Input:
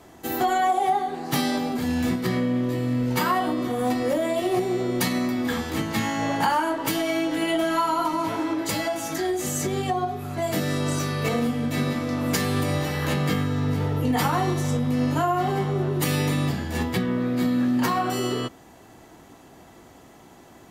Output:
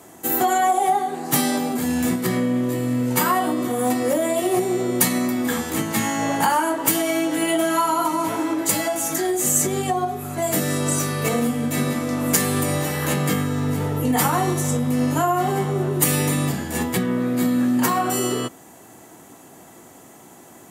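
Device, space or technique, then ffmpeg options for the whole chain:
budget condenser microphone: -af "highpass=120,highshelf=frequency=6200:width_type=q:width=1.5:gain=8,volume=3dB"

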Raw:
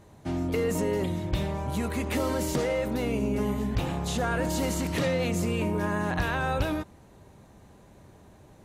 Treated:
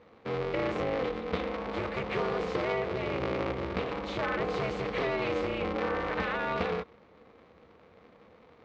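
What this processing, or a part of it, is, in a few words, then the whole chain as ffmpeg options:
ring modulator pedal into a guitar cabinet: -af "aeval=exprs='val(0)*sgn(sin(2*PI*130*n/s))':channel_layout=same,highpass=80,equalizer=frequency=270:width_type=q:width=4:gain=-4,equalizer=frequency=480:width_type=q:width=4:gain=9,equalizer=frequency=1200:width_type=q:width=4:gain=6,equalizer=frequency=2200:width_type=q:width=4:gain=6,lowpass=frequency=4300:width=0.5412,lowpass=frequency=4300:width=1.3066,volume=-5.5dB"

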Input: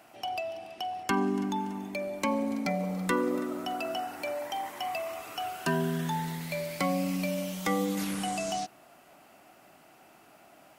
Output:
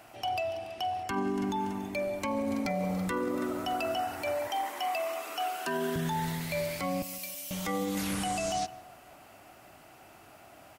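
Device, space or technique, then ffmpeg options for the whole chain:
car stereo with a boomy subwoofer: -filter_complex "[0:a]asettb=1/sr,asplit=3[link_01][link_02][link_03];[link_01]atrim=end=4.474[link_04];[link_02]atrim=start=4.47:end=5.96,asetpts=PTS-STARTPTS,afade=type=in:duration=0.004:curve=qsin,afade=type=out:start_time=1.486:duration=0.004:curve=qsin,highpass=frequency=240:width=0.5412,highpass=frequency=240:width=1.3066[link_05];[link_03]atrim=start=5.956[link_06];[link_04][link_05]acrossfade=duration=0.004:curve1=hsin:curve2=qsin[link_07];[link_07][link_06]acrossfade=duration=0.004:curve1=qsin:curve2=hsin,asettb=1/sr,asplit=3[link_08][link_09][link_10];[link_08]atrim=end=7.024[link_11];[link_09]atrim=start=7.02:end=7.51,asetpts=PTS-STARTPTS,afade=type=in:duration=0.004:curve=qsin,afade=type=out:start_time=0.486:duration=0.004:curve=qsin,aderivative[link_12];[link_10]atrim=start=7.506[link_13];[link_11][link_12]acrossfade=duration=0.004:curve1=hsin:curve2=qsin[link_14];[link_14][link_13]acrossfade=duration=0.004:curve1=qsin:curve2=hsin,lowshelf=frequency=130:width_type=q:width=1.5:gain=8,asplit=2[link_15][link_16];[link_16]adelay=161,lowpass=frequency=2200:poles=1,volume=-19.5dB,asplit=2[link_17][link_18];[link_18]adelay=161,lowpass=frequency=2200:poles=1,volume=0.48,asplit=2[link_19][link_20];[link_20]adelay=161,lowpass=frequency=2200:poles=1,volume=0.48,asplit=2[link_21][link_22];[link_22]adelay=161,lowpass=frequency=2200:poles=1,volume=0.48[link_23];[link_15][link_17][link_19][link_21][link_23]amix=inputs=5:normalize=0,alimiter=level_in=2dB:limit=-24dB:level=0:latency=1:release=33,volume=-2dB,volume=3dB"

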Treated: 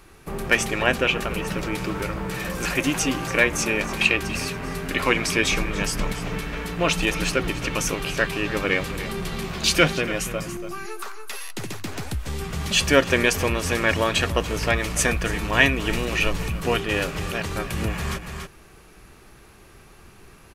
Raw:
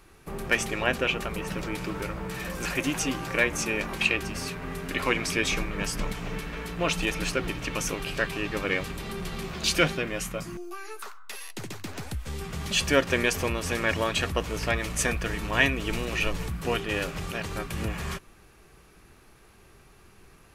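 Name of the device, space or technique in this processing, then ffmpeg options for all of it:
ducked delay: -filter_complex "[0:a]asplit=3[link_01][link_02][link_03];[link_02]adelay=285,volume=-6dB[link_04];[link_03]apad=whole_len=918448[link_05];[link_04][link_05]sidechaincompress=threshold=-39dB:ratio=8:attack=16:release=150[link_06];[link_01][link_06]amix=inputs=2:normalize=0,volume=5dB"

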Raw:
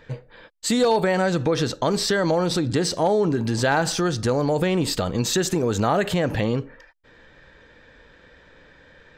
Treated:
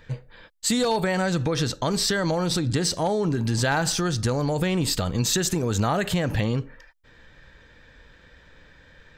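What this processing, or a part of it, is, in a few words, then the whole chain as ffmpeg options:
smiley-face EQ: -af "lowshelf=frequency=160:gain=6,equalizer=frequency=430:width_type=o:width=2:gain=-4.5,highshelf=frequency=5500:gain=5.5,volume=-1.5dB"

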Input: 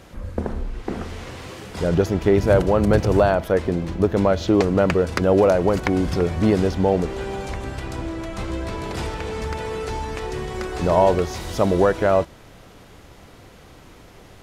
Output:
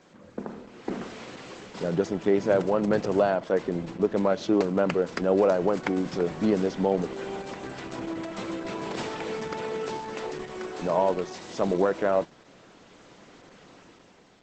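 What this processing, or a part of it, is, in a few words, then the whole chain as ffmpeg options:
video call: -filter_complex "[0:a]asettb=1/sr,asplit=3[link_01][link_02][link_03];[link_01]atrim=end=10.034[link_04];[link_02]atrim=start=10.03:end=10.94,asetpts=PTS-STARTPTS,afade=type=in:duration=0.004:curve=qsin,afade=type=out:start_time=0.906:duration=0.004:curve=qsin,highpass=110[link_05];[link_03]atrim=start=10.936[link_06];[link_04][link_05]acrossfade=duration=0.004:curve1=hsin:curve2=qsin[link_07];[link_07][link_06]acrossfade=duration=0.004:curve1=qsin:curve2=hsin,highpass=frequency=160:width=0.5412,highpass=frequency=160:width=1.3066,dynaudnorm=framelen=120:gausssize=11:maxgain=6dB,volume=-8dB" -ar 48000 -c:a libopus -b:a 12k

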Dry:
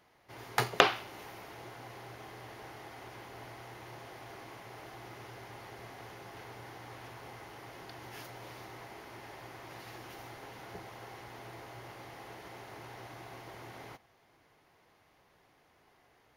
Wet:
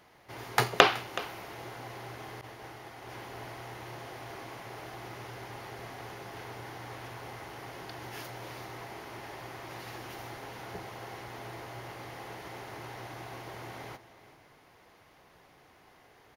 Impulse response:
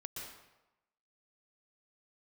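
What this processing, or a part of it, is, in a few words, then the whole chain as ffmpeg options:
compressed reverb return: -filter_complex "[0:a]aecho=1:1:374:0.15,asplit=2[link_01][link_02];[1:a]atrim=start_sample=2205[link_03];[link_02][link_03]afir=irnorm=-1:irlink=0,acompressor=threshold=-58dB:ratio=6,volume=-2dB[link_04];[link_01][link_04]amix=inputs=2:normalize=0,asettb=1/sr,asplit=3[link_05][link_06][link_07];[link_05]atrim=end=2.414[link_08];[link_06]atrim=start=2.41:end=3.09,asetpts=PTS-STARTPTS,afade=type=in:duration=0.004:curve=qsin,afade=type=out:start_time=0.676:duration=0.004:curve=qsin,agate=range=-33dB:threshold=-43dB:ratio=3:detection=peak[link_09];[link_07]atrim=start=3.086[link_10];[link_08][link_09]acrossfade=duration=0.004:curve1=hsin:curve2=qsin[link_11];[link_11][link_10]acrossfade=duration=0.004:curve1=qsin:curve2=hsin,volume=3.5dB"

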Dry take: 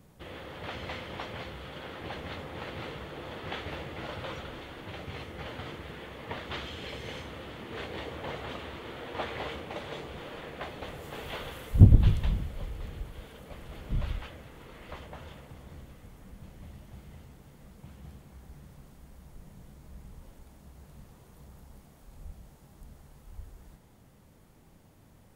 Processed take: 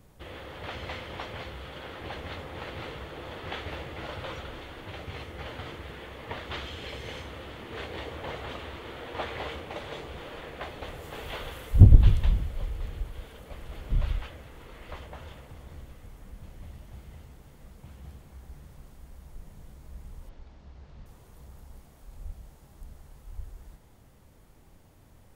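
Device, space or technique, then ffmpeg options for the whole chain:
low shelf boost with a cut just above: -filter_complex "[0:a]asettb=1/sr,asplit=3[link_01][link_02][link_03];[link_01]atrim=end=20.294[link_04];[link_02]atrim=start=20.29:end=21.06,asetpts=PTS-STARTPTS,afade=type=in:duration=0.004:curve=qsin,afade=type=out:start_time=0.766:duration=0.004:curve=qsin,lowpass=frequency=5300:width=0.5412,lowpass=frequency=5300:width=1.3066[link_05];[link_03]atrim=start=21.056[link_06];[link_04][link_05]acrossfade=duration=0.004:curve1=hsin:curve2=qsin[link_07];[link_07][link_06]acrossfade=duration=0.004:curve1=qsin:curve2=hsin,lowshelf=frequency=70:gain=6.5,equalizer=frequency=180:width_type=o:width=1.2:gain=-4.5,volume=1dB"

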